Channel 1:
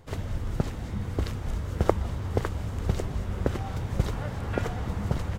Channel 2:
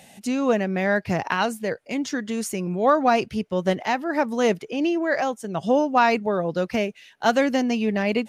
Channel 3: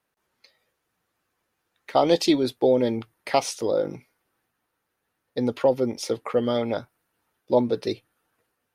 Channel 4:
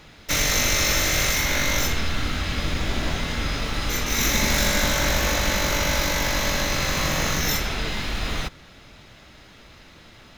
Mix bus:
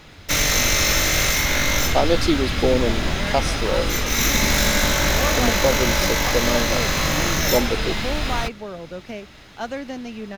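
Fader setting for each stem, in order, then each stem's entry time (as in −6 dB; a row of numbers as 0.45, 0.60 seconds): −16.5, −10.0, 0.0, +2.5 decibels; 0.00, 2.35, 0.00, 0.00 seconds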